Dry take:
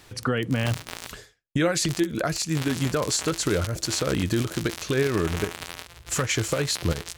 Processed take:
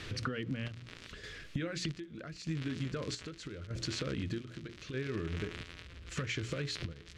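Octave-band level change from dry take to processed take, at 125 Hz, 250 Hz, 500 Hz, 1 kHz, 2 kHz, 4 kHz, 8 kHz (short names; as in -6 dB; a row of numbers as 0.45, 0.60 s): -11.0, -13.0, -15.5, -16.0, -12.0, -12.5, -20.0 dB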